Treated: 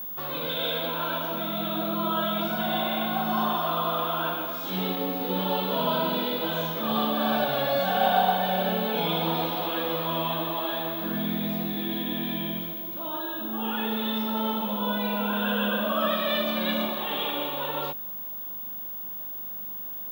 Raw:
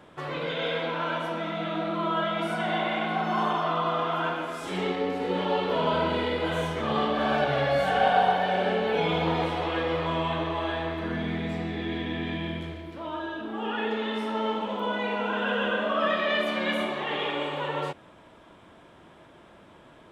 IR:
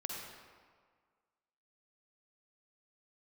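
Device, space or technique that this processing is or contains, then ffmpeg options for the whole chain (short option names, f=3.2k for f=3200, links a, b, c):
old television with a line whistle: -af "highpass=f=170:w=0.5412,highpass=f=170:w=1.3066,equalizer=f=200:t=q:w=4:g=7,equalizer=f=410:t=q:w=4:g=-7,equalizer=f=2k:t=q:w=4:g=-10,equalizer=f=3.7k:t=q:w=4:g=8,lowpass=f=6.8k:w=0.5412,lowpass=f=6.8k:w=1.3066,aeval=exprs='val(0)+0.0224*sin(2*PI*15625*n/s)':c=same"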